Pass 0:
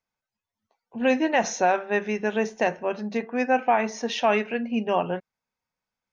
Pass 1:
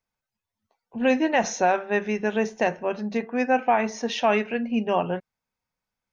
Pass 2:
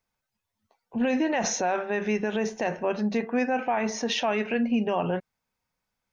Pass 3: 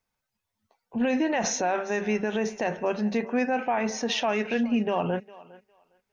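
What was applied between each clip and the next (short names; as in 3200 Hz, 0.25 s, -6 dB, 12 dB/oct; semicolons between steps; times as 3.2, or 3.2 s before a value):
low shelf 120 Hz +7 dB
limiter -20.5 dBFS, peak gain reduction 10.5 dB; gain +3.5 dB
thinning echo 0.407 s, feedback 19%, high-pass 380 Hz, level -19 dB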